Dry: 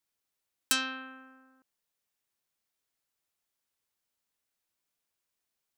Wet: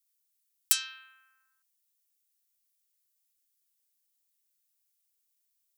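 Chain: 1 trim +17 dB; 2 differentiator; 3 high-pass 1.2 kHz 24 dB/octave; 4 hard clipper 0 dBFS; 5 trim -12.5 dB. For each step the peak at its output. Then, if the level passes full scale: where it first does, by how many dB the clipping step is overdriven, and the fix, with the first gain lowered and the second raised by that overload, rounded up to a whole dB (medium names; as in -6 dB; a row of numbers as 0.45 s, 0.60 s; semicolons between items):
+5.5 dBFS, +9.0 dBFS, +8.5 dBFS, 0.0 dBFS, -12.5 dBFS; step 1, 8.5 dB; step 1 +8 dB, step 5 -3.5 dB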